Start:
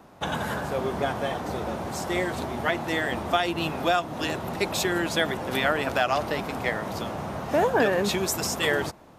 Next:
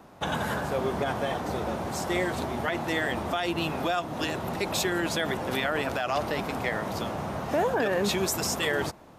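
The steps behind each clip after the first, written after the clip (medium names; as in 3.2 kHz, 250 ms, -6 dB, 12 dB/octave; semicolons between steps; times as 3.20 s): peak limiter -17 dBFS, peak gain reduction 8.5 dB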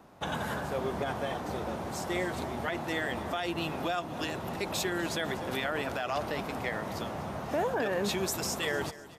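feedback delay 247 ms, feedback 45%, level -18 dB; trim -4.5 dB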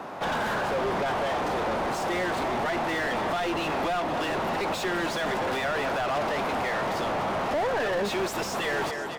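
overdrive pedal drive 30 dB, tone 1.7 kHz, clips at -20 dBFS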